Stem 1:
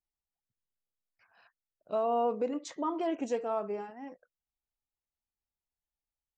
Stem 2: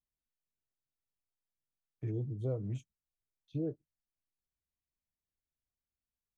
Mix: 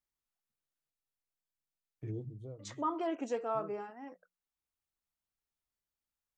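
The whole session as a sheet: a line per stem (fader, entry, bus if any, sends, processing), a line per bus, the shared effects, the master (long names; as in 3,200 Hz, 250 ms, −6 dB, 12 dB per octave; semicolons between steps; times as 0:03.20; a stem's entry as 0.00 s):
−3.5 dB, 0.00 s, muted 0:00.90–0:02.59, no send, high-pass filter 160 Hz; parametric band 1,300 Hz +6 dB 0.66 octaves
−2.5 dB, 0.00 s, no send, automatic ducking −12 dB, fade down 0.40 s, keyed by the first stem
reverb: not used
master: mains-hum notches 60/120/180 Hz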